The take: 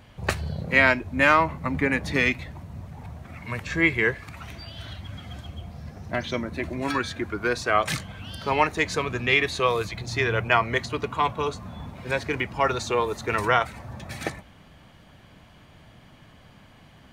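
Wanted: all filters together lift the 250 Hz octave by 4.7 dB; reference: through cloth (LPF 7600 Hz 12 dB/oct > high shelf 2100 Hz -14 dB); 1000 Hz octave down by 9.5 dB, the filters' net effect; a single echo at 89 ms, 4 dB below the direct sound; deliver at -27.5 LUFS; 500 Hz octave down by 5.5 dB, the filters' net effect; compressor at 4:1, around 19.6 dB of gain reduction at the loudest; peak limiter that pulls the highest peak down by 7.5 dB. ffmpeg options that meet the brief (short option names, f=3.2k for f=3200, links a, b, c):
-af "equalizer=f=250:t=o:g=8.5,equalizer=f=500:t=o:g=-7,equalizer=f=1k:t=o:g=-7,acompressor=threshold=-40dB:ratio=4,alimiter=level_in=7.5dB:limit=-24dB:level=0:latency=1,volume=-7.5dB,lowpass=7.6k,highshelf=f=2.1k:g=-14,aecho=1:1:89:0.631,volume=16dB"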